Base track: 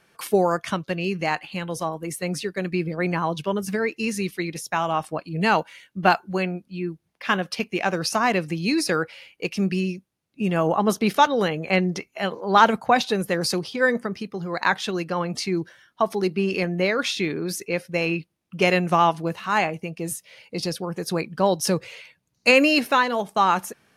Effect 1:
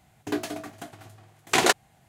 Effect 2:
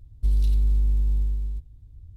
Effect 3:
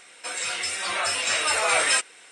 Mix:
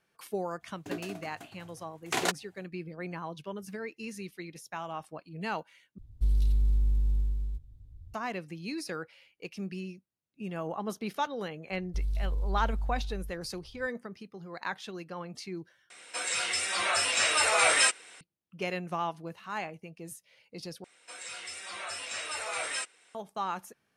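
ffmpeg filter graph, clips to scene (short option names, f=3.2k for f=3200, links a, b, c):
-filter_complex "[2:a]asplit=2[a][b];[3:a]asplit=2[c][d];[0:a]volume=-14.5dB[e];[b]equalizer=f=250:t=o:w=0.77:g=-6.5[f];[e]asplit=4[g][h][i][j];[g]atrim=end=5.984[k];[a]atrim=end=2.16,asetpts=PTS-STARTPTS,volume=-4.5dB[l];[h]atrim=start=8.136:end=15.904[m];[c]atrim=end=2.31,asetpts=PTS-STARTPTS,volume=-2dB[n];[i]atrim=start=18.206:end=20.844[o];[d]atrim=end=2.31,asetpts=PTS-STARTPTS,volume=-13dB[p];[j]atrim=start=23.146[q];[1:a]atrim=end=2.08,asetpts=PTS-STARTPTS,volume=-9dB,afade=t=in:d=0.05,afade=t=out:st=2.03:d=0.05,adelay=590[r];[f]atrim=end=2.16,asetpts=PTS-STARTPTS,volume=-10dB,afade=t=in:d=0.004:c=hsin,afade=t=out:st=2.156:d=0.004:c=hsin,adelay=11710[s];[k][l]acrossfade=d=0.004:c1=hsin:c2=hsin[t];[t][m]acrossfade=d=0.004:c1=hsin:c2=hsin[u];[u][n]acrossfade=d=0.004:c1=hsin:c2=hsin[v];[v][o]acrossfade=d=0.004:c1=hsin:c2=hsin[w];[w][p]acrossfade=d=0.004:c1=hsin:c2=hsin[x];[x][q]acrossfade=d=0.004:c1=hsin:c2=hsin[y];[y][r][s]amix=inputs=3:normalize=0"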